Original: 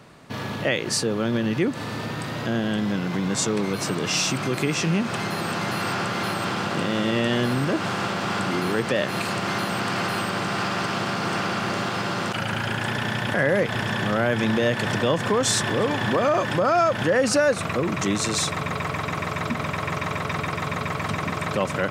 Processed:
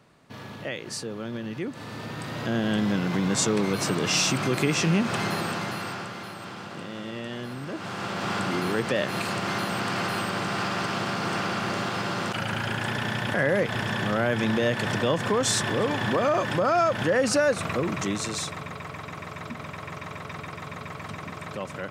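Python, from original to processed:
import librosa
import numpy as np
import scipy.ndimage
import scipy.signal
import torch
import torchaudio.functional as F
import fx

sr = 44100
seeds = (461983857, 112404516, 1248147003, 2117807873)

y = fx.gain(x, sr, db=fx.line((1.57, -10.0), (2.75, 0.0), (5.31, 0.0), (6.29, -12.5), (7.6, -12.5), (8.27, -2.5), (17.82, -2.5), (18.78, -10.0)))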